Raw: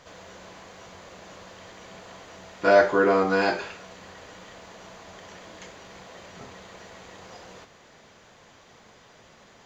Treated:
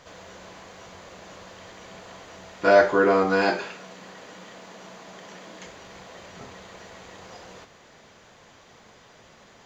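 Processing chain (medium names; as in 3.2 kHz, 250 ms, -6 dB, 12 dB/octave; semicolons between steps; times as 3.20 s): 3.44–5.65 s: resonant low shelf 120 Hz -11 dB, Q 1.5; trim +1 dB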